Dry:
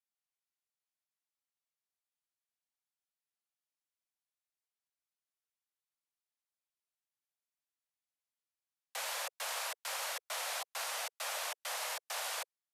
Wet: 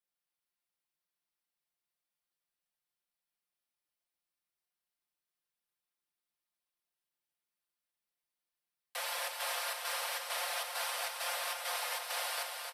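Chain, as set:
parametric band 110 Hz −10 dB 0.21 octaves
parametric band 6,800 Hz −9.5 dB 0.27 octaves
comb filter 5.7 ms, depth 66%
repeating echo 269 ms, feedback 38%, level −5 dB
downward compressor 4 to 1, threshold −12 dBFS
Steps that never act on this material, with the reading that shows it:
parametric band 110 Hz: nothing at its input below 380 Hz
downward compressor, threshold −12 dBFS: peak of its input −23.5 dBFS

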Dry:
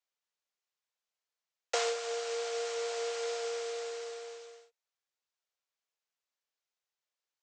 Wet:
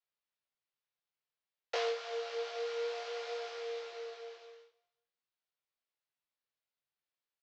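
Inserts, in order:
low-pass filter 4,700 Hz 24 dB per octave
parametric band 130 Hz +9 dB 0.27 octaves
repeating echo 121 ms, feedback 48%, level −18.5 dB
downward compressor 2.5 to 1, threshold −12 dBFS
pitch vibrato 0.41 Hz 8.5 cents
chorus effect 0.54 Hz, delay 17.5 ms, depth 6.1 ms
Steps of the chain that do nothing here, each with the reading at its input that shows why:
parametric band 130 Hz: nothing at its input below 450 Hz
downward compressor, threshold −12 dBFS: peak of its input −18.0 dBFS

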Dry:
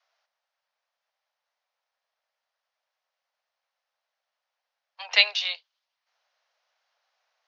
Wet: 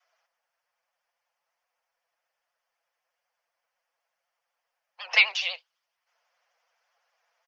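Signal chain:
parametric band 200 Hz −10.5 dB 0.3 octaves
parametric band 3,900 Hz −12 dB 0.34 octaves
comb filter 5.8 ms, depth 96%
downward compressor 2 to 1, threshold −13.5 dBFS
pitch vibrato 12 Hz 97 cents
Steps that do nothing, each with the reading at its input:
parametric band 200 Hz: nothing at its input below 380 Hz

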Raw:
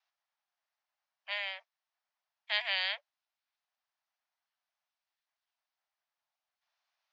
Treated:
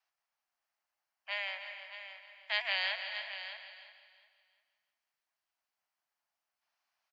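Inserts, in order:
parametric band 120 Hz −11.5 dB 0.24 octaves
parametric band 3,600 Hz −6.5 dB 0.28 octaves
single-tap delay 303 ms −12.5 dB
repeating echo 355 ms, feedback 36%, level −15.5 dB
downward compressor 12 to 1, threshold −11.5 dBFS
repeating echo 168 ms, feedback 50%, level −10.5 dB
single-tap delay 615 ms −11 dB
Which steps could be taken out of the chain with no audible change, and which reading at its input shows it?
parametric band 120 Hz: nothing at its input below 540 Hz
downward compressor, threshold −11.5 dBFS: peak of its input −17.0 dBFS

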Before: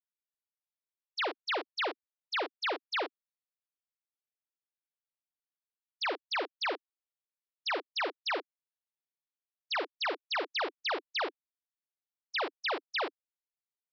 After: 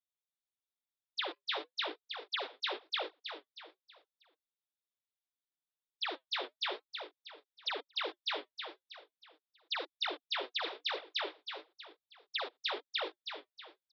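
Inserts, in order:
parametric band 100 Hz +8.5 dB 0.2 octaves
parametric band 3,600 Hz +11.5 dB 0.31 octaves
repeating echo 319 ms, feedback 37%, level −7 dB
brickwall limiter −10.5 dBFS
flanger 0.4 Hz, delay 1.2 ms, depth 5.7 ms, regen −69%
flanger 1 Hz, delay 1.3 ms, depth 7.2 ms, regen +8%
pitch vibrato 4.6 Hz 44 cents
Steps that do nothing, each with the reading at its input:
parametric band 100 Hz: nothing at its input below 240 Hz
brickwall limiter −10.5 dBFS: peak of its input −17.0 dBFS

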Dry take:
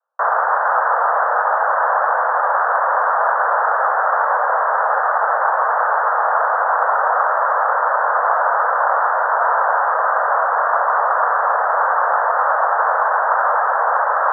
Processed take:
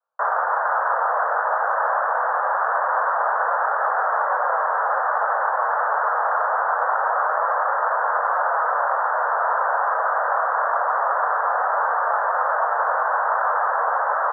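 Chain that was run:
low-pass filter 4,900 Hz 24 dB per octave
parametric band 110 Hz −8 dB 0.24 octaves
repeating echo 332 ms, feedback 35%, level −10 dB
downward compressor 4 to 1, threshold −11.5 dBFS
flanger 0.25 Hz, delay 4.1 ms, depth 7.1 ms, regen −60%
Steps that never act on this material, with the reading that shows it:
low-pass filter 4,900 Hz: nothing at its input above 2,000 Hz
parametric band 110 Hz: nothing at its input below 400 Hz

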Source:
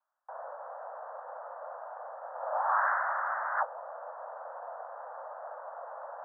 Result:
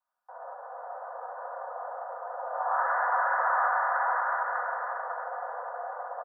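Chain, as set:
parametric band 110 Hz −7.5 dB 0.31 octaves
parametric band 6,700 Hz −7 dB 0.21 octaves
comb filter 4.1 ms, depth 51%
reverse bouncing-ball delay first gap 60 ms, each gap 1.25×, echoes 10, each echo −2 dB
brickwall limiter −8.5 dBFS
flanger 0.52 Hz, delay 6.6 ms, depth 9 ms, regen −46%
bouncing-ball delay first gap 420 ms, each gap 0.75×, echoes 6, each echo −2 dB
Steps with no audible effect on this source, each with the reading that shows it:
parametric band 110 Hz: nothing at its input below 430 Hz
parametric band 6,700 Hz: nothing at its input above 2,000 Hz
brickwall limiter −8.5 dBFS: peak of its input −11.5 dBFS

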